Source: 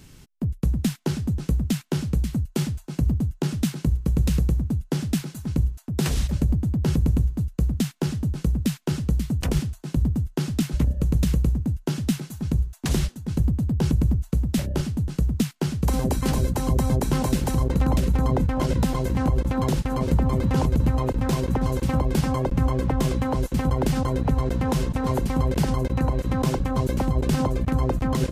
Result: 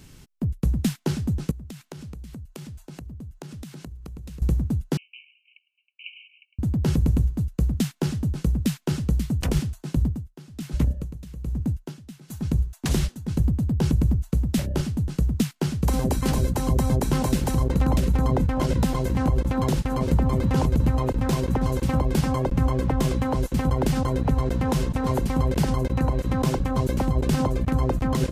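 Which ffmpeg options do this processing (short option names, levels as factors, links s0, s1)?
-filter_complex "[0:a]asettb=1/sr,asplit=3[s0][s1][s2];[s0]atrim=end=1.514[s3];[s1]atrim=start=1.51:end=4.42,asetpts=PTS-STARTPTS,afade=t=in:d=0.004:c=qsin,afade=t=out:st=2.906:d=0.004:c=qsin,acompressor=threshold=0.0178:ratio=12:attack=3.2:release=140:knee=1:detection=peak[s4];[s2]atrim=start=4.416[s5];[s3][s4]acrossfade=d=0.004:c1=hsin:c2=qsin[s6];[s6][s5]acrossfade=d=0.004:c1=qsin:c2=hsin,asettb=1/sr,asplit=3[s7][s8][s9];[s7]atrim=end=4.974[s10];[s8]atrim=start=4.97:end=6.59,asetpts=PTS-STARTPTS,afade=t=in:d=0.004:c=qsin,afade=t=out:st=1.616:d=0.004:c=qsin,asuperpass=centerf=2600:order=20:qfactor=3.1[s11];[s9]atrim=start=6.586[s12];[s10][s11]acrossfade=d=0.004:c1=hsin:c2=qsin[s13];[s13][s12]acrossfade=d=0.004:c1=qsin:c2=hsin,asplit=3[s14][s15][s16];[s14]afade=t=out:st=9.98:d=0.02[s17];[s15]aeval=exprs='val(0)*pow(10,-19*(0.5-0.5*cos(2*PI*1.2*n/s))/20)':c=same,afade=t=in:st=9.98:d=0.02,afade=t=out:st=12.28:d=0.02[s18];[s16]afade=t=in:st=12.28:d=0.02[s19];[s17][s18][s19]amix=inputs=3:normalize=0"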